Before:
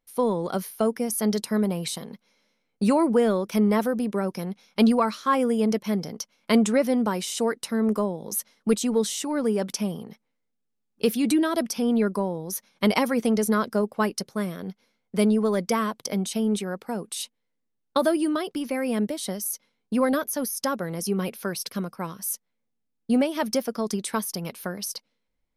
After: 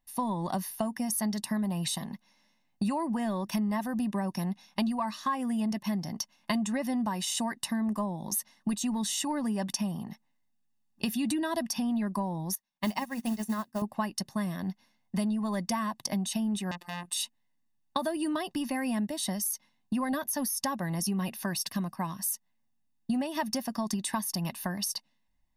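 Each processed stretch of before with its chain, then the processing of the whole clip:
12.55–13.82 s: hum notches 50/100/150/200/250 Hz + modulation noise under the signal 20 dB + upward expansion 2.5:1, over -36 dBFS
16.71–17.13 s: robot voice 175 Hz + transformer saturation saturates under 3.1 kHz
whole clip: comb 1.1 ms, depth 93%; compression 6:1, threshold -26 dBFS; trim -1.5 dB

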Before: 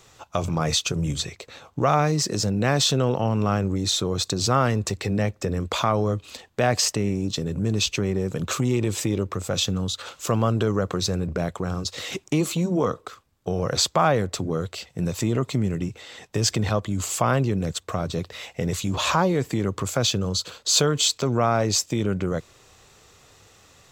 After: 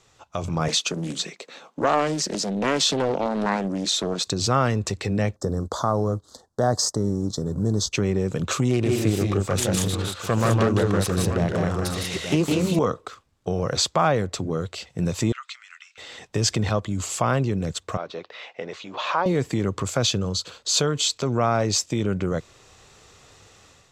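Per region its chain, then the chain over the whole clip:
0.68–4.27 s: steep high-pass 170 Hz 48 dB/octave + loudspeaker Doppler distortion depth 0.54 ms
5.36–7.93 s: companding laws mixed up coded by A + Butterworth band-stop 2.5 kHz, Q 0.79
8.70–12.79 s: self-modulated delay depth 0.2 ms + multi-tap echo 158/188/881 ms -4/-3/-10 dB
15.32–15.98 s: elliptic high-pass 1.3 kHz, stop band 80 dB + distance through air 90 m
17.97–19.26 s: de-esser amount 55% + high-pass 490 Hz + distance through air 220 m
whole clip: low-pass 9.8 kHz 12 dB/octave; level rider gain up to 8 dB; trim -6 dB

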